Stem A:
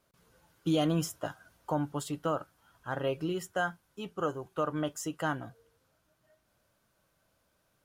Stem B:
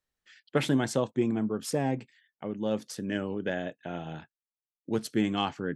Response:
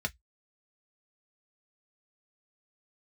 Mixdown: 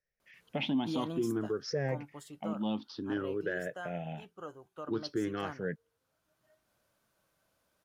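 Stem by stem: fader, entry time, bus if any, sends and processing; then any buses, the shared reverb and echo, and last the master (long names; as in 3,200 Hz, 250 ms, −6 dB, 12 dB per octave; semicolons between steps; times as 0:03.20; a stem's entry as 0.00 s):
−2.0 dB, 0.20 s, no send, automatic ducking −10 dB, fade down 1.75 s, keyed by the second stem
−6.5 dB, 0.00 s, no send, rippled gain that drifts along the octave scale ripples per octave 0.54, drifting +0.54 Hz, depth 17 dB; elliptic low-pass filter 5,600 Hz; low-shelf EQ 500 Hz +4 dB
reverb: not used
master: low-shelf EQ 140 Hz −6.5 dB; brickwall limiter −23.5 dBFS, peak gain reduction 7 dB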